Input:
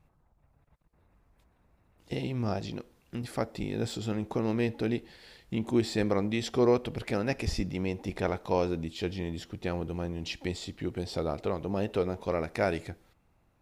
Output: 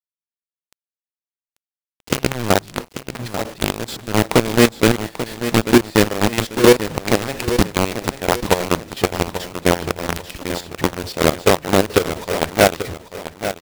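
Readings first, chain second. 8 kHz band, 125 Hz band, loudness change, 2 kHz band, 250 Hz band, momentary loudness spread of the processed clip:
+21.5 dB, +10.0 dB, +13.0 dB, +17.5 dB, +12.0 dB, 13 LU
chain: high shelf 9600 Hz -10.5 dB; AGC gain up to 14.5 dB; companded quantiser 2-bit; step gate "x.x..x..x.x..x.." 174 bpm -12 dB; on a send: feedback echo 0.839 s, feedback 34%, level -11 dB; on the sum: gain -3.5 dB

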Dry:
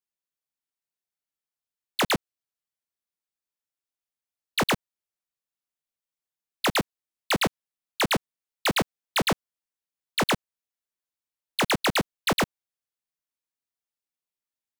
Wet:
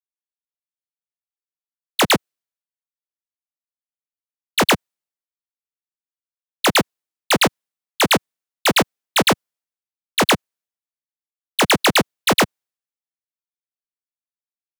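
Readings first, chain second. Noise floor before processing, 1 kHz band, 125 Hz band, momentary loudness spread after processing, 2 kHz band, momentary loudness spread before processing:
under -85 dBFS, +8.0 dB, +5.0 dB, 7 LU, +8.0 dB, 6 LU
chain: HPF 170 Hz 6 dB/oct; in parallel at +2.5 dB: limiter -27 dBFS, peak gain reduction 11 dB; on the sum: three-band expander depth 100%; gain +4 dB

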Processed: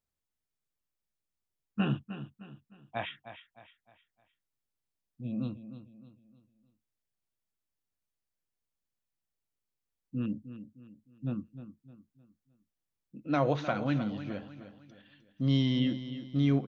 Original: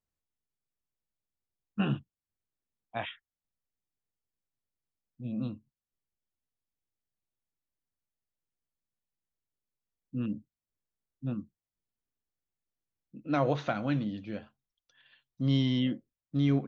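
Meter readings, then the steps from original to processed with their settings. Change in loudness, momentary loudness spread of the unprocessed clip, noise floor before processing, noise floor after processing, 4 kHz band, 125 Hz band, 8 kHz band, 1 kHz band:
0.0 dB, 14 LU, under -85 dBFS, under -85 dBFS, +0.5 dB, 0.0 dB, n/a, 0.0 dB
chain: feedback echo 0.307 s, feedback 39%, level -12 dB

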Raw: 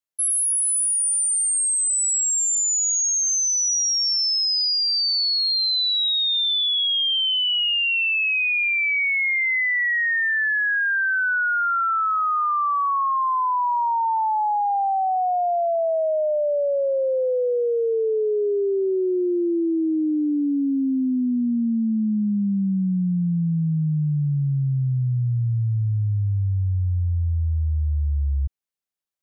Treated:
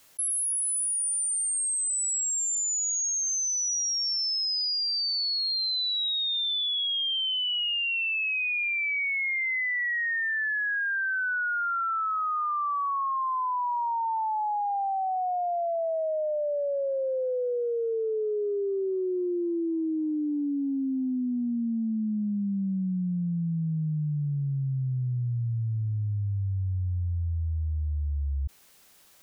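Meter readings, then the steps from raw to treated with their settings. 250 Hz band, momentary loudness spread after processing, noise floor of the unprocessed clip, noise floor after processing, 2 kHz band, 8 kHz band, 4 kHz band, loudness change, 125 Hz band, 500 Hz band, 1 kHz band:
-6.5 dB, 5 LU, -22 dBFS, -28 dBFS, -6.5 dB, -6.5 dB, -6.5 dB, -6.5 dB, -6.5 dB, -6.5 dB, -6.5 dB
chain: fast leveller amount 100%; gain -7 dB

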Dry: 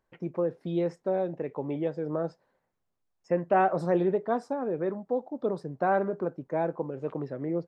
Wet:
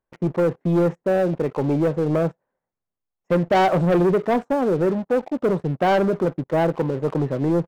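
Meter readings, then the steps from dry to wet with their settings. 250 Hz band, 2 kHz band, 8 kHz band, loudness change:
+10.5 dB, +8.5 dB, n/a, +8.5 dB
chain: Wiener smoothing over 9 samples; dynamic EQ 130 Hz, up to +5 dB, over -42 dBFS, Q 0.96; sample leveller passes 3

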